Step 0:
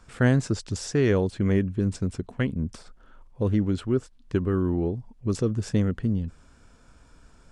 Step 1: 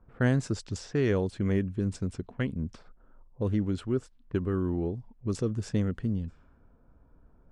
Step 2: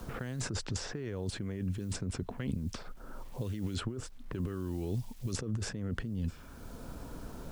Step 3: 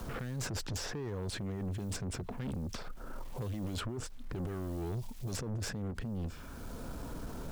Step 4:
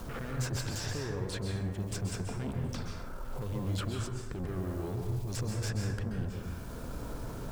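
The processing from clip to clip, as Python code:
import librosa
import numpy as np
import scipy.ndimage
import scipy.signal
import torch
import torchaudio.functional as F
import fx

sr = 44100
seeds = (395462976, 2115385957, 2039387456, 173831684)

y1 = fx.env_lowpass(x, sr, base_hz=710.0, full_db=-23.0)
y1 = y1 * 10.0 ** (-4.5 / 20.0)
y2 = fx.over_compress(y1, sr, threshold_db=-36.0, ratio=-1.0)
y2 = fx.quant_dither(y2, sr, seeds[0], bits=12, dither='none')
y2 = fx.band_squash(y2, sr, depth_pct=70)
y3 = 10.0 ** (-37.5 / 20.0) * np.tanh(y2 / 10.0 ** (-37.5 / 20.0))
y3 = fx.end_taper(y3, sr, db_per_s=190.0)
y3 = y3 * 10.0 ** (4.0 / 20.0)
y4 = fx.add_hum(y3, sr, base_hz=60, snr_db=18)
y4 = fx.rev_plate(y4, sr, seeds[1], rt60_s=1.0, hf_ratio=0.55, predelay_ms=120, drr_db=1.0)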